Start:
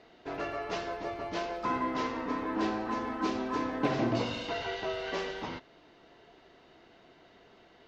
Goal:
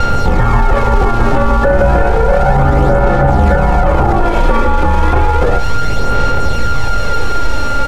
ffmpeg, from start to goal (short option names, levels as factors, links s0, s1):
-filter_complex "[0:a]acontrast=68,highpass=130,lowpass=2100,aeval=exprs='val(0)*sin(2*PI*460*n/s)':c=same,aeval=exprs='val(0)+0.0141*sin(2*PI*1400*n/s)':c=same,aecho=1:1:2.3:0.42,acrusher=bits=7:dc=4:mix=0:aa=0.000001,aemphasis=mode=reproduction:type=riaa,aphaser=in_gain=1:out_gain=1:delay=3.5:decay=0.4:speed=0.32:type=sinusoidal,acrossover=split=270|1000[s0][s1][s2];[s0]acompressor=threshold=0.0794:ratio=4[s3];[s1]acompressor=threshold=0.0282:ratio=4[s4];[s2]acompressor=threshold=0.02:ratio=4[s5];[s3][s4][s5]amix=inputs=3:normalize=0,equalizer=f=490:w=1.6:g=9.5,alimiter=level_in=10.6:limit=0.891:release=50:level=0:latency=1,volume=0.891"